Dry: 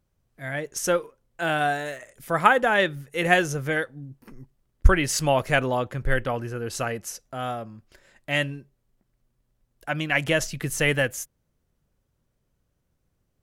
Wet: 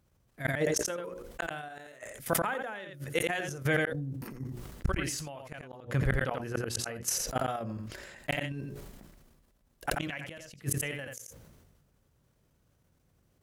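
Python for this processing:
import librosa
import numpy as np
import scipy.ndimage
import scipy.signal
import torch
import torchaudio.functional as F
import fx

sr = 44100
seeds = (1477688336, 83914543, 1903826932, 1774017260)

y = scipy.signal.sosfilt(scipy.signal.butter(2, 45.0, 'highpass', fs=sr, output='sos'), x)
y = fx.low_shelf(y, sr, hz=73.0, db=2.0)
y = fx.hum_notches(y, sr, base_hz=60, count=10)
y = fx.level_steps(y, sr, step_db=11)
y = fx.gate_flip(y, sr, shuts_db=-24.0, range_db=-42)
y = y + 10.0 ** (-10.5 / 20.0) * np.pad(y, (int(86 * sr / 1000.0), 0))[:len(y)]
y = fx.sustainer(y, sr, db_per_s=34.0)
y = y * 10.0 ** (7.0 / 20.0)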